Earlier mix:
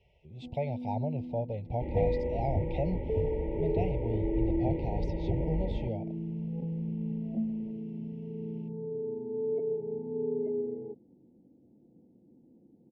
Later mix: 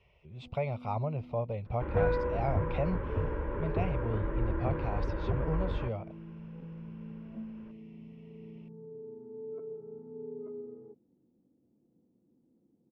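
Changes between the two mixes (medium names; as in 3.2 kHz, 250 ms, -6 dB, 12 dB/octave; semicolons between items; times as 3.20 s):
speech: add peaking EQ 2.3 kHz +6 dB 0.5 oct; first sound -10.0 dB; master: remove brick-wall FIR band-stop 950–1900 Hz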